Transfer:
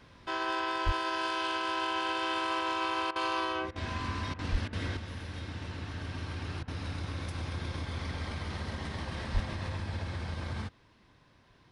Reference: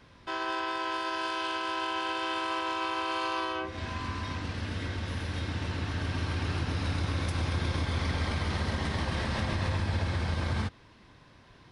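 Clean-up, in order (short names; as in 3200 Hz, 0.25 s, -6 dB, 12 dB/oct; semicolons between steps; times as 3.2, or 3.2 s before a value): clip repair -20 dBFS; de-plosive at 0.85/4.51/9.33; interpolate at 3.11/3.71/4.34/4.68/6.63, 47 ms; gain correction +6.5 dB, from 4.97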